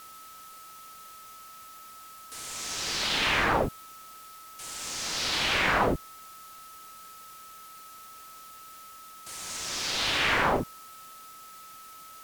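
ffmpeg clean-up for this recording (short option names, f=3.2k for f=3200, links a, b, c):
-af "bandreject=f=1.3k:w=30,afwtdn=0.0028"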